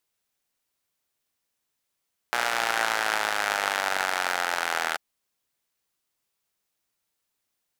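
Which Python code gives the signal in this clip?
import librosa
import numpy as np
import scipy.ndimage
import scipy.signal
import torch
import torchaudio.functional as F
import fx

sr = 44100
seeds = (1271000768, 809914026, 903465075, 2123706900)

y = fx.engine_four_rev(sr, seeds[0], length_s=2.64, rpm=3600, resonances_hz=(820.0, 1400.0), end_rpm=2400)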